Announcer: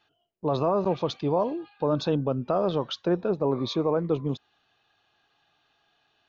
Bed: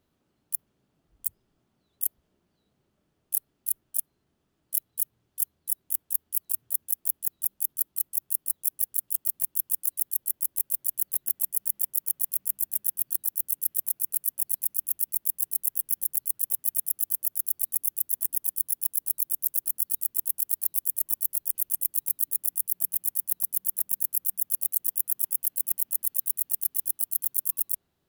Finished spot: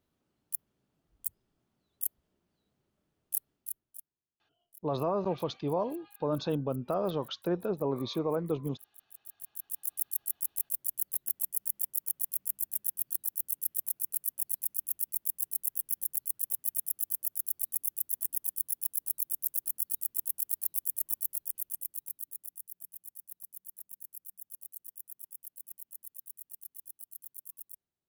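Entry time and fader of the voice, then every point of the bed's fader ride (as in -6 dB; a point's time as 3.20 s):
4.40 s, -6.0 dB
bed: 3.52 s -5.5 dB
4.27 s -28.5 dB
8.96 s -28.5 dB
9.97 s -5.5 dB
21.19 s -5.5 dB
22.84 s -19.5 dB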